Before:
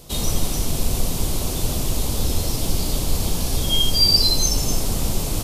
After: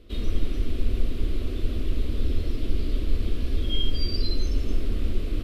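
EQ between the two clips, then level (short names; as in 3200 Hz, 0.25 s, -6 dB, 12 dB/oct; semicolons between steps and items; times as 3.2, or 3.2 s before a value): air absorption 480 m; bell 560 Hz -6.5 dB 0.95 oct; fixed phaser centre 360 Hz, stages 4; 0.0 dB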